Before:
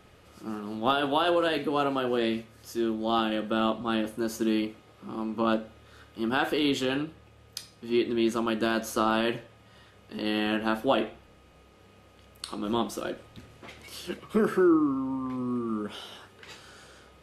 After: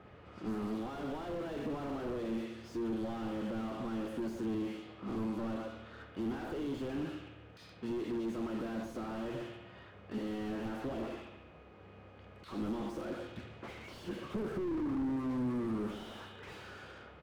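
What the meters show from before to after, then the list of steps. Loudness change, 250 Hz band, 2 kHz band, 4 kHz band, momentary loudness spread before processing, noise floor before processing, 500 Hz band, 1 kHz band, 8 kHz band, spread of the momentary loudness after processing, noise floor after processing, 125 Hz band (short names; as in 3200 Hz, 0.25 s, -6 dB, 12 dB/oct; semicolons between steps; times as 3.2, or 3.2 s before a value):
-11.0 dB, -8.0 dB, -14.5 dB, -18.0 dB, 18 LU, -56 dBFS, -11.0 dB, -14.5 dB, under -15 dB, 16 LU, -56 dBFS, -3.5 dB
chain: HPF 60 Hz; high shelf 3200 Hz +8 dB; speakerphone echo 0.12 s, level -12 dB; compressor 3:1, threshold -31 dBFS, peak gain reduction 10.5 dB; limiter -24.5 dBFS, peak gain reduction 11 dB; low-pass opened by the level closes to 1300 Hz, open at -32 dBFS; on a send: analogue delay 71 ms, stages 2048, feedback 65%, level -13.5 dB; on the sum: slew limiter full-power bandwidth 6.3 Hz; gain +1 dB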